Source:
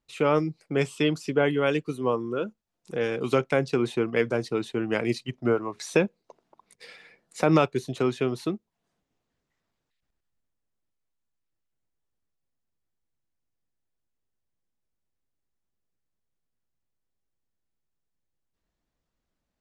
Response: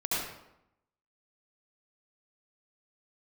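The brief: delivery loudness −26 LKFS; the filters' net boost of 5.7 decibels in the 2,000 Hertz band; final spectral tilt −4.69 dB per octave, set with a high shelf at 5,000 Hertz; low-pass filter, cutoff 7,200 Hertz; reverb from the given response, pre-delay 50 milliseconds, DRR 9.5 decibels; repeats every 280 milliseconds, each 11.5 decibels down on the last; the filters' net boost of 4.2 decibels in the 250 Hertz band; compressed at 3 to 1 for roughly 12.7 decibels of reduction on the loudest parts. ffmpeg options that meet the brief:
-filter_complex "[0:a]lowpass=7200,equalizer=frequency=250:width_type=o:gain=5.5,equalizer=frequency=2000:width_type=o:gain=6.5,highshelf=frequency=5000:gain=5,acompressor=threshold=-31dB:ratio=3,aecho=1:1:280|560|840:0.266|0.0718|0.0194,asplit=2[link_01][link_02];[1:a]atrim=start_sample=2205,adelay=50[link_03];[link_02][link_03]afir=irnorm=-1:irlink=0,volume=-17.5dB[link_04];[link_01][link_04]amix=inputs=2:normalize=0,volume=7dB"

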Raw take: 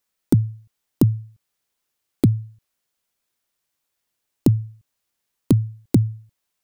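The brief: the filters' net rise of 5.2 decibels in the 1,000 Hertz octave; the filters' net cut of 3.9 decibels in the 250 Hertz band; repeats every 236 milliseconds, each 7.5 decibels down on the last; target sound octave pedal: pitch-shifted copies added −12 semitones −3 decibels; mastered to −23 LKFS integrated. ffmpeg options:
ffmpeg -i in.wav -filter_complex "[0:a]equalizer=frequency=250:width_type=o:gain=-5.5,equalizer=frequency=1000:width_type=o:gain=7,aecho=1:1:236|472|708|944|1180:0.422|0.177|0.0744|0.0312|0.0131,asplit=2[link_01][link_02];[link_02]asetrate=22050,aresample=44100,atempo=2,volume=-3dB[link_03];[link_01][link_03]amix=inputs=2:normalize=0" out.wav

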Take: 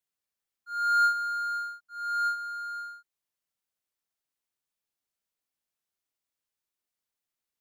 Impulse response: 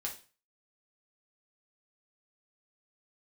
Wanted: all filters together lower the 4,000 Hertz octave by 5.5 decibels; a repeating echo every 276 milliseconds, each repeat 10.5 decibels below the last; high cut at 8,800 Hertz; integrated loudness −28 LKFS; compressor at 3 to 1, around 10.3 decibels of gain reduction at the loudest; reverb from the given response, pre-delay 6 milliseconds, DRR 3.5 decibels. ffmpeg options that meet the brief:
-filter_complex "[0:a]lowpass=8800,equalizer=frequency=4000:width_type=o:gain=-5.5,acompressor=threshold=-35dB:ratio=3,aecho=1:1:276|552|828:0.299|0.0896|0.0269,asplit=2[link_01][link_02];[1:a]atrim=start_sample=2205,adelay=6[link_03];[link_02][link_03]afir=irnorm=-1:irlink=0,volume=-4dB[link_04];[link_01][link_04]amix=inputs=2:normalize=0,volume=6dB"

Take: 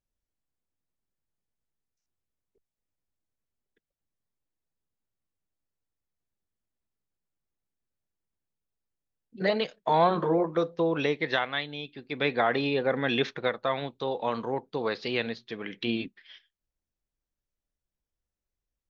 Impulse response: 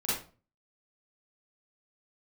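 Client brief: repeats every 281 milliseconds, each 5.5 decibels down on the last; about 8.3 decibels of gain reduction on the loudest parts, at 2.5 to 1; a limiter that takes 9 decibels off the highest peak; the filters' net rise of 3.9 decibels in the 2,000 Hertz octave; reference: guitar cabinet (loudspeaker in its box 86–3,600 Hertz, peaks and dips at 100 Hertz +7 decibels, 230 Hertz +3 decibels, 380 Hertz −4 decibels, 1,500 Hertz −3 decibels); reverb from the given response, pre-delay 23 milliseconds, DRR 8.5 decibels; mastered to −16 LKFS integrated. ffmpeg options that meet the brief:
-filter_complex "[0:a]equalizer=frequency=2000:width_type=o:gain=6,acompressor=threshold=-31dB:ratio=2.5,alimiter=level_in=0.5dB:limit=-24dB:level=0:latency=1,volume=-0.5dB,aecho=1:1:281|562|843|1124|1405|1686|1967:0.531|0.281|0.149|0.079|0.0419|0.0222|0.0118,asplit=2[link_01][link_02];[1:a]atrim=start_sample=2205,adelay=23[link_03];[link_02][link_03]afir=irnorm=-1:irlink=0,volume=-15.5dB[link_04];[link_01][link_04]amix=inputs=2:normalize=0,highpass=86,equalizer=frequency=100:width_type=q:width=4:gain=7,equalizer=frequency=230:width_type=q:width=4:gain=3,equalizer=frequency=380:width_type=q:width=4:gain=-4,equalizer=frequency=1500:width_type=q:width=4:gain=-3,lowpass=frequency=3600:width=0.5412,lowpass=frequency=3600:width=1.3066,volume=19dB"

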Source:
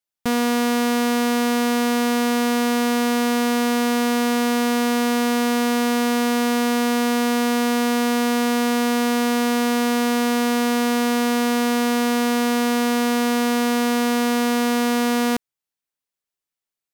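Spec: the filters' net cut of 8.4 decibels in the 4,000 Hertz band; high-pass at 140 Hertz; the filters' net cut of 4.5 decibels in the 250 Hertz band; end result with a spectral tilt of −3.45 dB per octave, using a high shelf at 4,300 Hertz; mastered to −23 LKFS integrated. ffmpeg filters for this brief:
ffmpeg -i in.wav -af "highpass=140,equalizer=frequency=250:width_type=o:gain=-4,equalizer=frequency=4000:width_type=o:gain=-7,highshelf=frequency=4300:gain=-8" out.wav

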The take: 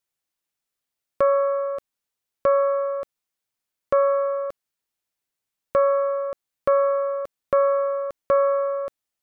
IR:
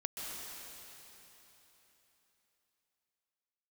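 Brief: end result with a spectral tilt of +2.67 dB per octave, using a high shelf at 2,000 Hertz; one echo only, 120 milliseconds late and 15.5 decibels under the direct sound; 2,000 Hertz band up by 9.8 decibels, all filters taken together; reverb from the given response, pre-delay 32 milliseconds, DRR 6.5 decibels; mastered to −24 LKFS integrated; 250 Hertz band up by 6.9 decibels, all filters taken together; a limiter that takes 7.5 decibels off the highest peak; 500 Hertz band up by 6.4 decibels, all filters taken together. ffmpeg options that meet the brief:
-filter_complex "[0:a]equalizer=frequency=250:width_type=o:gain=7,equalizer=frequency=500:width_type=o:gain=5,highshelf=frequency=2000:gain=5.5,equalizer=frequency=2000:width_type=o:gain=9,alimiter=limit=-12dB:level=0:latency=1,aecho=1:1:120:0.168,asplit=2[link_01][link_02];[1:a]atrim=start_sample=2205,adelay=32[link_03];[link_02][link_03]afir=irnorm=-1:irlink=0,volume=-8dB[link_04];[link_01][link_04]amix=inputs=2:normalize=0,volume=-7dB"

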